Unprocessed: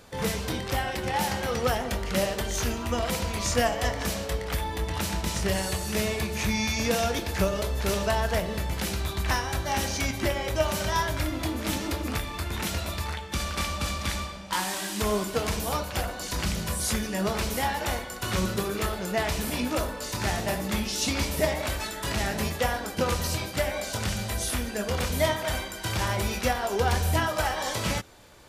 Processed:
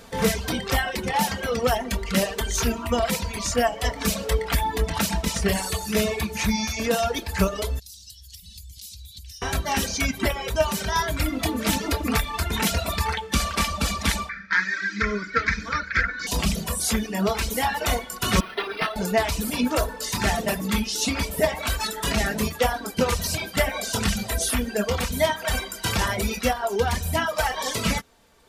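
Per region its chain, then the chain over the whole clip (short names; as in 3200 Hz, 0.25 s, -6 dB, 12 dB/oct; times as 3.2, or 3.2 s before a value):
7.79–9.42 Chebyshev band-stop 100–4000 Hz, order 3 + low shelf 78 Hz -11.5 dB + compressor 16:1, threshold -39 dBFS
14.29–16.27 LPF 6200 Hz 24 dB/oct + band shelf 1900 Hz +15.5 dB 1.2 oct + fixed phaser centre 2800 Hz, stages 6
18.4–18.96 HPF 1400 Hz 6 dB/oct + comb 2.9 ms, depth 33% + decimation joined by straight lines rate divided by 6×
whole clip: reverb removal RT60 1.5 s; comb 4.4 ms, depth 45%; vocal rider 0.5 s; gain +4.5 dB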